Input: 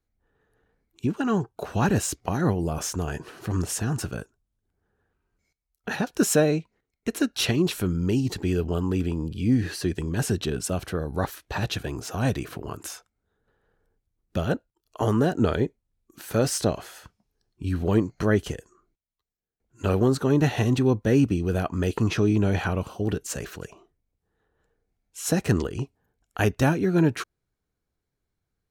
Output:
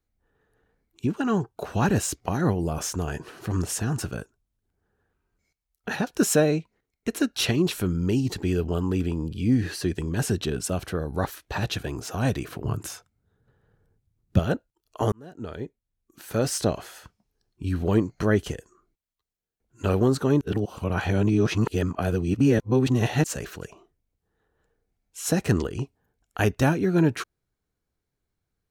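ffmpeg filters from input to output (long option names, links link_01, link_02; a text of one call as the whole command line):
ffmpeg -i in.wav -filter_complex "[0:a]asettb=1/sr,asplit=3[link_01][link_02][link_03];[link_01]atrim=end=12.624[link_04];[link_02]atrim=start=12.62:end=14.39,asetpts=PTS-STARTPTS,afade=type=in:duration=0.004:curve=qsin,afade=type=out:start_time=1.766:duration=0.004:curve=qsin,equalizer=frequency=120:width_type=o:width=1.5:gain=13.5[link_05];[link_03]atrim=start=14.386[link_06];[link_04][link_05]acrossfade=duration=0.004:curve1=hsin:curve2=qsin[link_07];[link_07][link_06]acrossfade=duration=0.004:curve1=qsin:curve2=hsin,asplit=4[link_08][link_09][link_10][link_11];[link_08]atrim=end=15.12,asetpts=PTS-STARTPTS,afade=type=out:start_time=15.116:duration=0.004:curve=hsin[link_12];[link_09]atrim=start=15.12:end=20.412,asetpts=PTS-STARTPTS,afade=type=in:duration=1.58[link_13];[link_10]atrim=start=20.408:end=23.242,asetpts=PTS-STARTPTS,areverse[link_14];[link_11]atrim=start=23.238[link_15];[link_12][link_13]concat=n=2:v=0:a=1[link_16];[link_16][link_14]acrossfade=duration=0.004:curve1=hsin:curve2=hsin[link_17];[link_17][link_15]acrossfade=duration=0.004:curve1=hsin:curve2=hsin" out.wav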